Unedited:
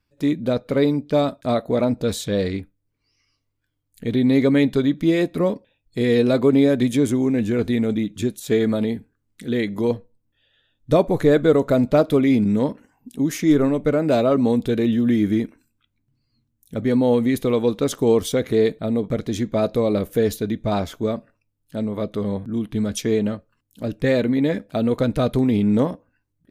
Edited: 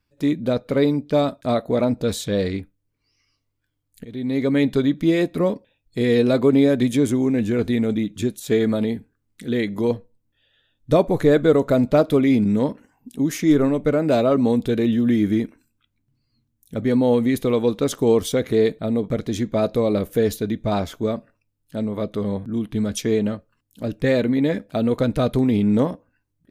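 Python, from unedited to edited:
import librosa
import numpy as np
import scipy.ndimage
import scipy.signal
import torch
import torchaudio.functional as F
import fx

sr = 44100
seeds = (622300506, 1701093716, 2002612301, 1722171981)

y = fx.edit(x, sr, fx.fade_in_from(start_s=4.05, length_s=0.67, floor_db=-17.5), tone=tone)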